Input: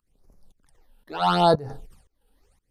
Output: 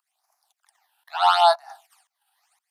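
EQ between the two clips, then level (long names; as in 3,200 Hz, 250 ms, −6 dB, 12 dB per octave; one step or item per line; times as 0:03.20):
Butterworth high-pass 680 Hz 96 dB per octave
+4.5 dB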